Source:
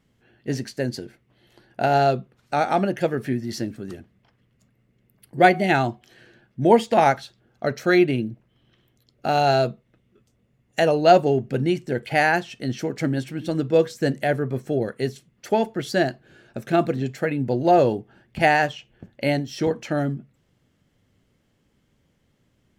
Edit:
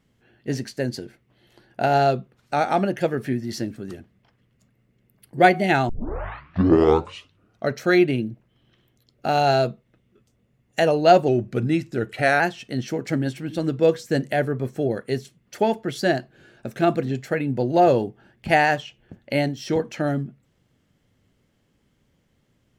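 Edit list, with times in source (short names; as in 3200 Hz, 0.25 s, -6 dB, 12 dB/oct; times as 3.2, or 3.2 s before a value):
5.89 tape start 1.80 s
11.28–12.31 speed 92%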